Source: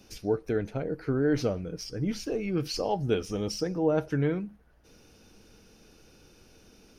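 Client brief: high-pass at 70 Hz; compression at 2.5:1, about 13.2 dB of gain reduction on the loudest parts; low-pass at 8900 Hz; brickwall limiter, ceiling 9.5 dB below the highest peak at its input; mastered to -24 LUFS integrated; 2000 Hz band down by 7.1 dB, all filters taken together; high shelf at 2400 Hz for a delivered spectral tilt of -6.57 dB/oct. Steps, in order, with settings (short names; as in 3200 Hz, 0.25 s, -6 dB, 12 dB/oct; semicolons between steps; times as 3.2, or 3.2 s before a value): HPF 70 Hz; LPF 8900 Hz; bell 2000 Hz -7 dB; high shelf 2400 Hz -6.5 dB; compressor 2.5:1, threshold -42 dBFS; gain +21.5 dB; limiter -15 dBFS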